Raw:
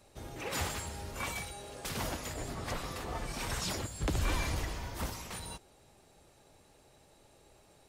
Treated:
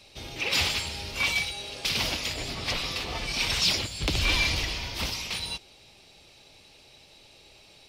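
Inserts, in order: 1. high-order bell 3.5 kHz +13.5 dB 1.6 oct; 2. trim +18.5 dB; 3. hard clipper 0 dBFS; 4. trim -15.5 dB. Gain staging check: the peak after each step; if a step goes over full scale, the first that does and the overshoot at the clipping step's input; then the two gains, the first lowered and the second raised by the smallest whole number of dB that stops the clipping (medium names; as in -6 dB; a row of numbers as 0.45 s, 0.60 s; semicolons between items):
-11.5 dBFS, +7.0 dBFS, 0.0 dBFS, -15.5 dBFS; step 2, 7.0 dB; step 2 +11.5 dB, step 4 -8.5 dB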